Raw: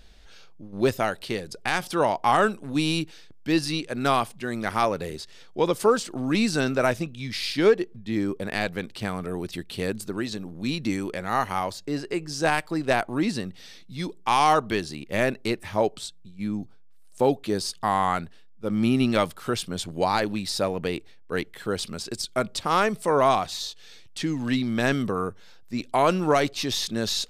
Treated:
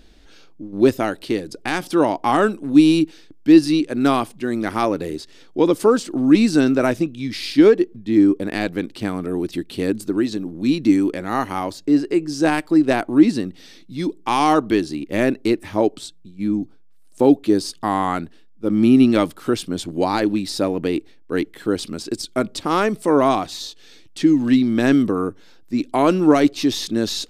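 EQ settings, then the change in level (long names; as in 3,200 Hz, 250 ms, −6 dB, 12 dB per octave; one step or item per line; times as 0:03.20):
parametric band 300 Hz +14 dB 0.69 octaves
+1.0 dB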